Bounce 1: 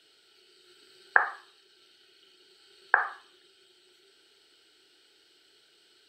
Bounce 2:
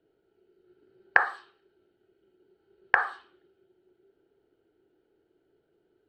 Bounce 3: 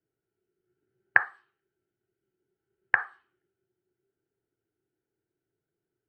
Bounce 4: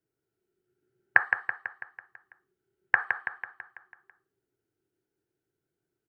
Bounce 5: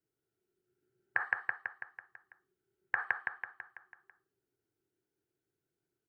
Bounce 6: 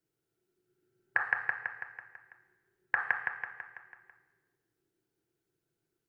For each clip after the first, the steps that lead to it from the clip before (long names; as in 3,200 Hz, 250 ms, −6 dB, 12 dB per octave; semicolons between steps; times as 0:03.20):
low-shelf EQ 210 Hz +6.5 dB; low-pass that shuts in the quiet parts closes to 570 Hz, open at −26 dBFS; level +1 dB
octave-band graphic EQ 125/500/2,000/4,000 Hz +11/−4/+8/−9 dB; expander for the loud parts 1.5 to 1, over −35 dBFS; level −4 dB
repeating echo 165 ms, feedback 56%, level −6.5 dB
brickwall limiter −10.5 dBFS, peak gain reduction 9 dB; level −3.5 dB
rectangular room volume 1,400 cubic metres, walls mixed, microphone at 0.77 metres; level +2.5 dB